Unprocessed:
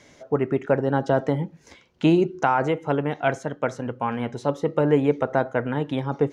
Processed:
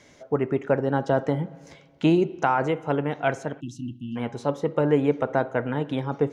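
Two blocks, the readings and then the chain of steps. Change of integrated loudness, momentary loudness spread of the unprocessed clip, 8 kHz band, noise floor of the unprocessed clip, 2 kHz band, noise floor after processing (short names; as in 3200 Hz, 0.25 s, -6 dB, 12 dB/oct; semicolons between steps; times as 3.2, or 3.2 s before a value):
-1.5 dB, 8 LU, n/a, -55 dBFS, -1.5 dB, -54 dBFS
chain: spring tank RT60 1.8 s, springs 46/56 ms, chirp 40 ms, DRR 19 dB; spectral delete 3.6–4.16, 350–2600 Hz; gain -1.5 dB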